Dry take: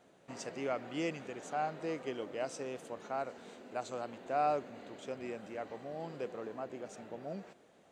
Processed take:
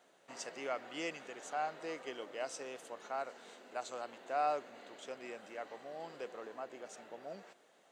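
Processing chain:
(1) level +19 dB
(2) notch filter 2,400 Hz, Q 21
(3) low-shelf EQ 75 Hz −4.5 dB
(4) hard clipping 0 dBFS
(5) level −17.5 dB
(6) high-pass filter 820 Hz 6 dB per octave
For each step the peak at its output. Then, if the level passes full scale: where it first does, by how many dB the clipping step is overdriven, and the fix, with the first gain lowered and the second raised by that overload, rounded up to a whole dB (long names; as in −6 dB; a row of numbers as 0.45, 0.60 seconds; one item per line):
−2.0, −2.0, −2.0, −2.0, −19.5, −22.5 dBFS
no step passes full scale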